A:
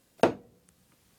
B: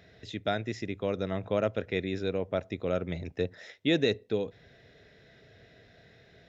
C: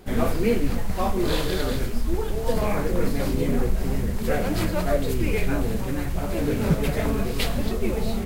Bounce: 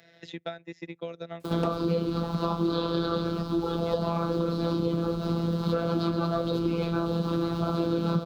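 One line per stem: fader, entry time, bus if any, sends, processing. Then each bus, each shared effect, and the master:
-13.5 dB, 1.40 s, no bus, no send, none
-17.5 dB, 0.00 s, bus A, no send, bass shelf 210 Hz -9.5 dB; transient shaper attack +7 dB, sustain -9 dB
+2.5 dB, 1.45 s, bus A, no send, FFT filter 130 Hz 0 dB, 200 Hz +8 dB, 380 Hz +6 dB, 830 Hz +3 dB, 1.3 kHz +12 dB, 1.9 kHz -15 dB, 3.9 kHz +9 dB, 8 kHz -17 dB; bit crusher 10-bit
bus A: 0.0 dB, robot voice 168 Hz; compression, threshold -21 dBFS, peak gain reduction 12 dB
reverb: none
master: high-pass 71 Hz 12 dB/octave; three bands compressed up and down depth 70%

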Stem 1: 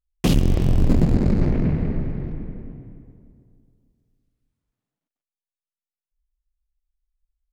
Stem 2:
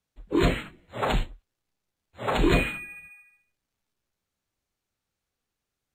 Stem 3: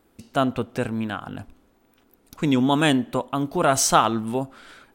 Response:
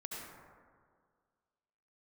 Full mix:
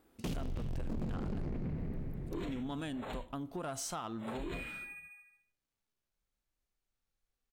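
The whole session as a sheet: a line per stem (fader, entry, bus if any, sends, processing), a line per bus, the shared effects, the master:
-12.5 dB, 0.00 s, no bus, no send, none
-5.5 dB, 2.00 s, bus A, no send, none
-4.5 dB, 0.00 s, bus A, no send, none
bus A: 0.0 dB, harmonic-percussive split percussive -6 dB; compression 4:1, threshold -37 dBFS, peak gain reduction 14.5 dB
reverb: none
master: saturation -29.5 dBFS, distortion -9 dB; compression, threshold -34 dBFS, peak gain reduction 3.5 dB

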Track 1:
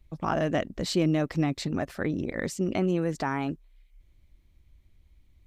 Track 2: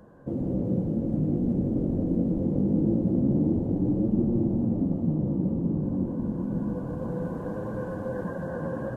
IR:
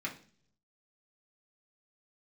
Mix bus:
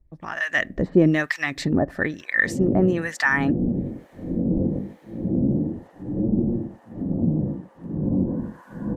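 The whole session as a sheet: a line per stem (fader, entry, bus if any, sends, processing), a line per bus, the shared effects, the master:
-1.5 dB, 0.00 s, send -21.5 dB, none
-4.0 dB, 2.20 s, no send, compression, threshold -26 dBFS, peak gain reduction 7.5 dB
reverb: on, RT60 0.50 s, pre-delay 3 ms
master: peaking EQ 1.8 kHz +14 dB 0.26 oct; level rider gain up to 13 dB; harmonic tremolo 1.1 Hz, depth 100%, crossover 970 Hz

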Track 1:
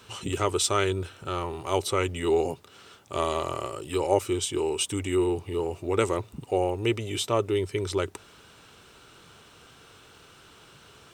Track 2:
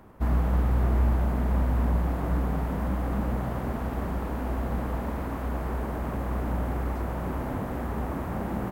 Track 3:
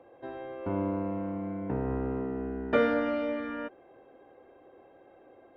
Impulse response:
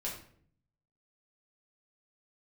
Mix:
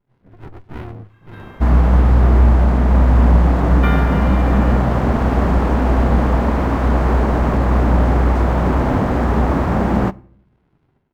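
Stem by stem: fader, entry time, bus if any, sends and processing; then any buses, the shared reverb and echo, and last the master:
-14.5 dB, 0.00 s, send -19.5 dB, frequency axis rescaled in octaves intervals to 85%; steep low-pass 1.7 kHz 48 dB/octave; sliding maximum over 65 samples
+2.5 dB, 1.40 s, send -20 dB, none
-4.0 dB, 1.10 s, no send, steep high-pass 1.1 kHz; treble shelf 3.9 kHz +8.5 dB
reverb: on, RT60 0.60 s, pre-delay 5 ms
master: level rider gain up to 12.5 dB; decimation joined by straight lines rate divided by 3×

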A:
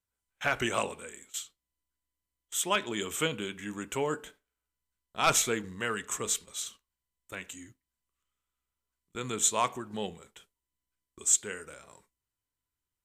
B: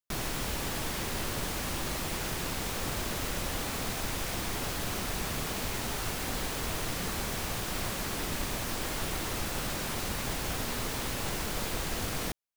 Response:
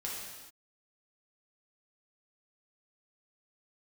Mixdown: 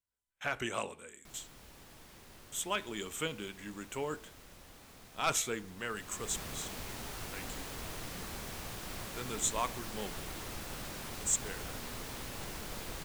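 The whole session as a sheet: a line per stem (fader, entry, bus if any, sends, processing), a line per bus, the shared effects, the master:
-6.5 dB, 0.00 s, no send, none
5.85 s -21.5 dB -> 6.37 s -9 dB, 1.15 s, no send, none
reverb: none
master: none

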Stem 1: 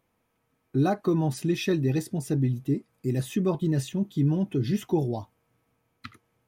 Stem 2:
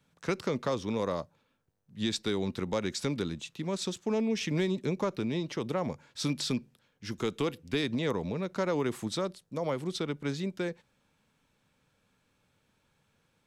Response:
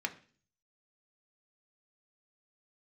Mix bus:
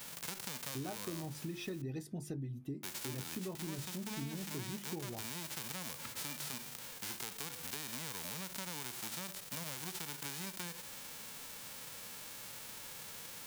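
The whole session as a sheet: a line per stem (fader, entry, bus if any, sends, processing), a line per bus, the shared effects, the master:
+3.0 dB, 0.00 s, no send, hum notches 50/100/150/200/250/300/350 Hz; auto duck -10 dB, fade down 0.75 s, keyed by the second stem
-8.5 dB, 0.00 s, muted 1.82–2.83 s, no send, formants flattened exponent 0.1; level flattener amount 70%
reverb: none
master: compression, threshold -39 dBFS, peak gain reduction 13 dB

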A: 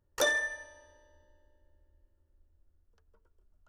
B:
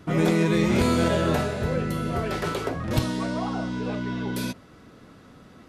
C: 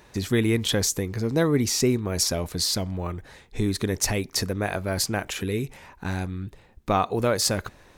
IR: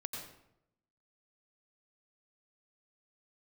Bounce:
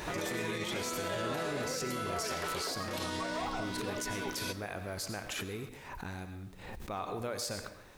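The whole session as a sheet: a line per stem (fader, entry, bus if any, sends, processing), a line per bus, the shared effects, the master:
+2.5 dB, 0.00 s, bus A, no send, none
-2.0 dB, 0.00 s, no bus, send -14 dB, high-pass 410 Hz 6 dB/octave; peak limiter -22 dBFS, peak gain reduction 9 dB
-5.0 dB, 0.00 s, bus A, send -11.5 dB, swell ahead of each attack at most 83 dB/s
bus A: 0.0 dB, bass shelf 180 Hz +12 dB; compression, threshold -34 dBFS, peak gain reduction 16.5 dB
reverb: on, RT60 0.80 s, pre-delay 83 ms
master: bass shelf 240 Hz -11.5 dB; bit crusher 11-bit; peak limiter -26.5 dBFS, peak gain reduction 7.5 dB

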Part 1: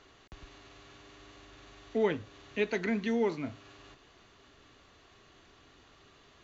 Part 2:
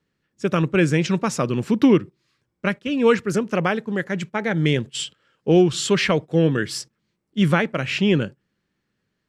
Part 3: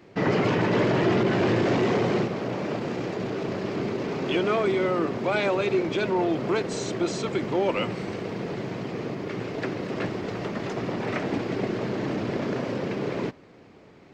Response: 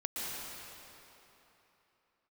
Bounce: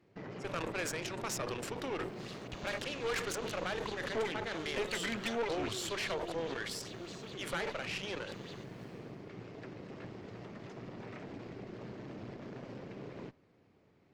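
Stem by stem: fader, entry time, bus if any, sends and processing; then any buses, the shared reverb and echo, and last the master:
+1.0 dB, 2.20 s, no send, treble shelf 2 kHz +9.5 dB; compression 6:1, threshold -33 dBFS, peak gain reduction 10.5 dB; sweeping bell 5 Hz 450–4400 Hz +14 dB
-11.5 dB, 0.00 s, no send, high-pass 490 Hz 24 dB/octave; transient shaper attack +3 dB, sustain -9 dB; decay stretcher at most 33 dB/s
-13.0 dB, 0.00 s, no send, peak limiter -21.5 dBFS, peak gain reduction 8.5 dB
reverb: none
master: peaking EQ 89 Hz +5.5 dB 1.9 oct; valve stage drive 30 dB, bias 0.75

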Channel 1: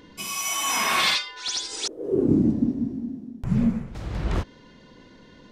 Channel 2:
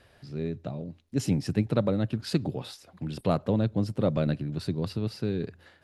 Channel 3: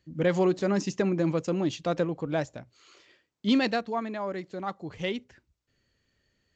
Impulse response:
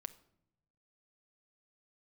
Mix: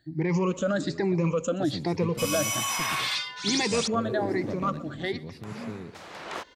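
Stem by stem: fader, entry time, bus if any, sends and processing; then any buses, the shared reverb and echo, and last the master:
+0.5 dB, 2.00 s, no send, no echo send, high-pass 630 Hz 12 dB/octave; peak limiter -20.5 dBFS, peak gain reduction 10 dB
-10.5 dB, 0.45 s, no send, echo send -16 dB, one-sided wavefolder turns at -17.5 dBFS
-3.0 dB, 0.00 s, send -4 dB, echo send -18 dB, drifting ripple filter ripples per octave 0.81, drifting +1.2 Hz, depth 22 dB; peak limiter -18 dBFS, peak gain reduction 9 dB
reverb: on, pre-delay 6 ms
echo: feedback delay 124 ms, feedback 54%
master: none

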